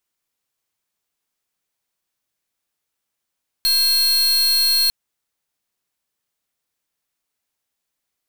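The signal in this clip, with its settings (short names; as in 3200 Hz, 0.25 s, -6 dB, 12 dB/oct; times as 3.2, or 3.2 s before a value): pulse 4250 Hz, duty 42% -16.5 dBFS 1.25 s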